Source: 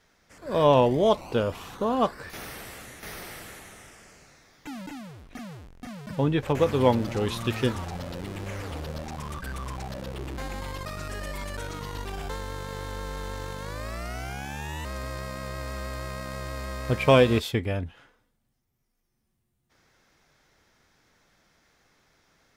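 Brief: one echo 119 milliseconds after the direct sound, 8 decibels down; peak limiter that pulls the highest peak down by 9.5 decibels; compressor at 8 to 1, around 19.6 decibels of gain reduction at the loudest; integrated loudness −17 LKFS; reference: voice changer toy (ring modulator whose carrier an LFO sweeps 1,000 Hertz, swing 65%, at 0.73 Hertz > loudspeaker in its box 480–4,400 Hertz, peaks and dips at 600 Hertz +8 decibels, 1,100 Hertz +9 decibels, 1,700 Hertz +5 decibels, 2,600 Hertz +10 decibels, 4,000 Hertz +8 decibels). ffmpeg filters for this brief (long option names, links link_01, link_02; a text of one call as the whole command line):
ffmpeg -i in.wav -af "acompressor=threshold=-34dB:ratio=8,alimiter=level_in=8.5dB:limit=-24dB:level=0:latency=1,volume=-8.5dB,aecho=1:1:119:0.398,aeval=exprs='val(0)*sin(2*PI*1000*n/s+1000*0.65/0.73*sin(2*PI*0.73*n/s))':channel_layout=same,highpass=480,equalizer=frequency=600:width_type=q:width=4:gain=8,equalizer=frequency=1100:width_type=q:width=4:gain=9,equalizer=frequency=1700:width_type=q:width=4:gain=5,equalizer=frequency=2600:width_type=q:width=4:gain=10,equalizer=frequency=4000:width_type=q:width=4:gain=8,lowpass=frequency=4400:width=0.5412,lowpass=frequency=4400:width=1.3066,volume=20.5dB" out.wav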